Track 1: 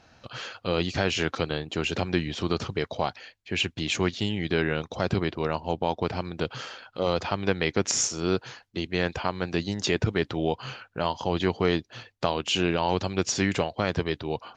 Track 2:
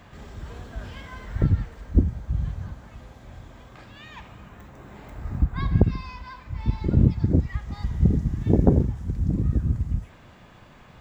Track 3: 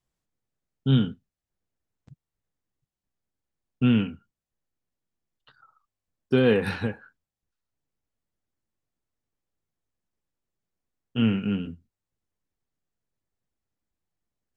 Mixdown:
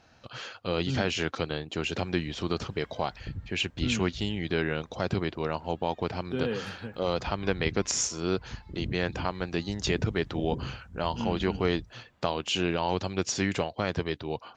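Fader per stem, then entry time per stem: −3.0, −17.5, −11.5 decibels; 0.00, 1.85, 0.00 seconds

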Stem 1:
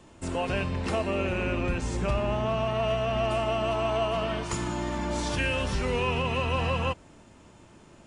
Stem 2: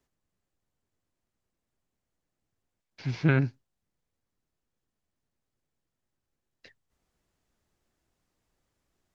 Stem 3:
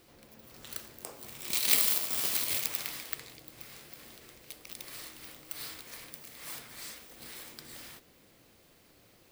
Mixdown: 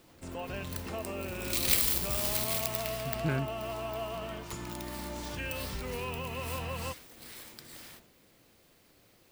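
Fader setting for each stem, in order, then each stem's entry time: −10.0, −8.5, −1.5 decibels; 0.00, 0.00, 0.00 seconds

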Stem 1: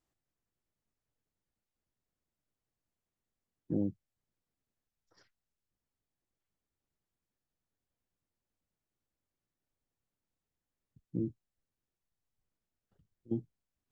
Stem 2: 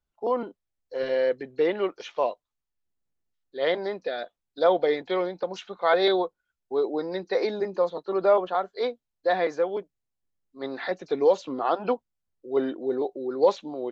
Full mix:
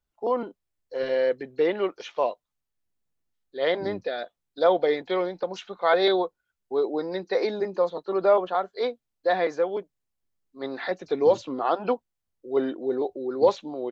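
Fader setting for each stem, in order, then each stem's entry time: −6.0, +0.5 decibels; 0.10, 0.00 seconds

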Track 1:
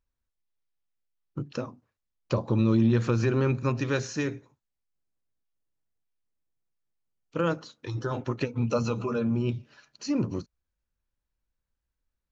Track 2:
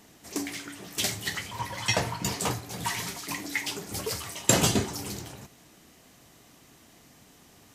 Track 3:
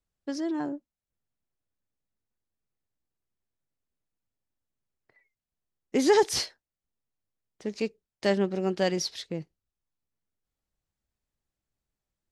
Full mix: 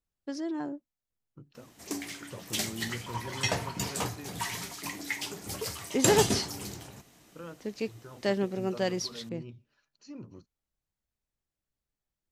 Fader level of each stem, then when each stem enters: −17.5, −3.5, −3.5 decibels; 0.00, 1.55, 0.00 seconds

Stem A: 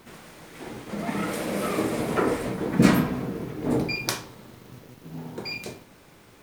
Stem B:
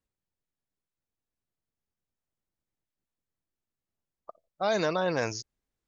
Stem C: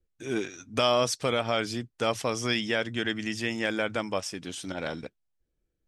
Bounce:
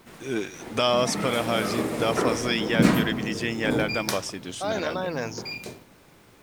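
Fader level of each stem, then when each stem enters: −1.5, −1.5, +1.5 decibels; 0.00, 0.00, 0.00 seconds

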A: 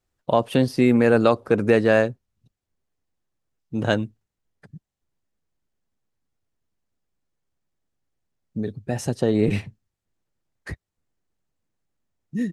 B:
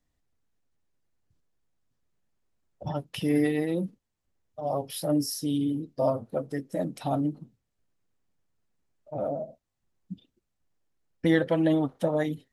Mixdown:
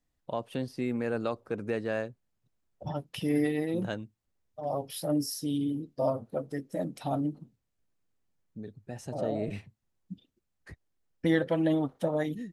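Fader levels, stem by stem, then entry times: −14.5, −3.0 decibels; 0.00, 0.00 seconds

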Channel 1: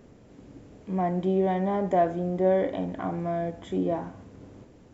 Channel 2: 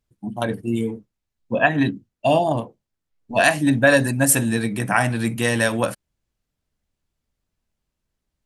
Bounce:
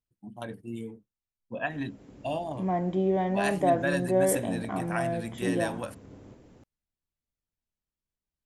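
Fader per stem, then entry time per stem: −1.5, −14.5 decibels; 1.70, 0.00 seconds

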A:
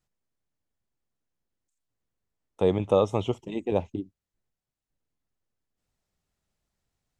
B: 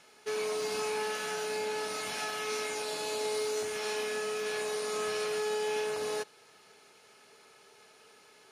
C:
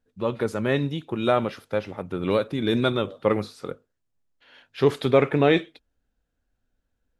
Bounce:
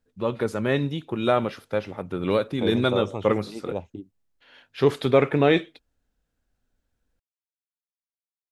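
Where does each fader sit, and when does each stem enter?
−5.5 dB, muted, 0.0 dB; 0.00 s, muted, 0.00 s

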